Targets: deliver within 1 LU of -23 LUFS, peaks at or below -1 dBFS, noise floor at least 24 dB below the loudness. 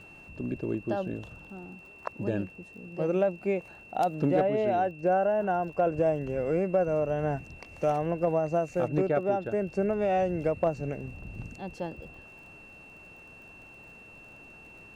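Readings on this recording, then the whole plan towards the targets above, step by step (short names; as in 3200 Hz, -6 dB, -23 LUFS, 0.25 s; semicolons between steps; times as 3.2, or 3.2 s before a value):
ticks 43/s; steady tone 2700 Hz; tone level -49 dBFS; loudness -29.0 LUFS; peak -16.0 dBFS; loudness target -23.0 LUFS
-> de-click; notch 2700 Hz, Q 30; gain +6 dB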